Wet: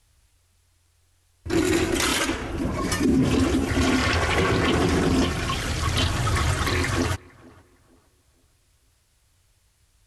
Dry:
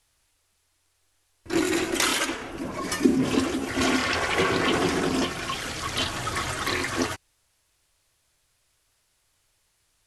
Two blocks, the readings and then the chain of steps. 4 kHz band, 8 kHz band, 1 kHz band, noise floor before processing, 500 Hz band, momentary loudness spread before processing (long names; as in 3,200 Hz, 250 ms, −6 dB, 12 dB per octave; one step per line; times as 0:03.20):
+0.5 dB, +0.5 dB, +1.0 dB, −70 dBFS, +2.0 dB, 8 LU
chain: parametric band 64 Hz +14.5 dB 2.6 octaves
brickwall limiter −14 dBFS, peak gain reduction 11 dB
tape delay 460 ms, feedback 38%, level −22 dB, low-pass 1,400 Hz
level +2 dB